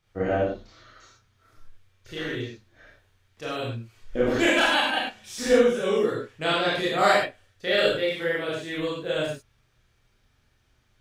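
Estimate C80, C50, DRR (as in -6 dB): 3.5 dB, 0.0 dB, -8.0 dB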